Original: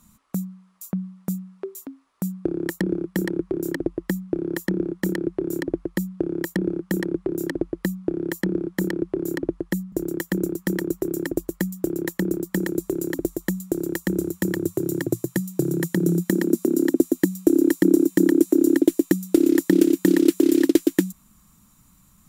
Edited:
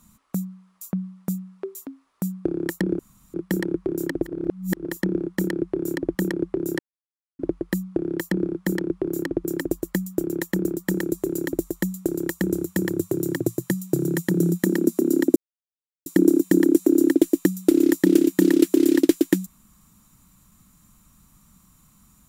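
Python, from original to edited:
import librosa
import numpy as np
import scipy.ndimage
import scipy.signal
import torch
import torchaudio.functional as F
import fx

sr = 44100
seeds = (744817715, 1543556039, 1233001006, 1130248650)

y = fx.edit(x, sr, fx.insert_room_tone(at_s=2.99, length_s=0.35),
    fx.reverse_span(start_s=3.98, length_s=0.52, crossfade_s=0.24),
    fx.cut(start_s=5.8, length_s=1.07),
    fx.insert_silence(at_s=7.51, length_s=0.6),
    fx.cut(start_s=9.56, length_s=1.54),
    fx.silence(start_s=17.02, length_s=0.7), tone=tone)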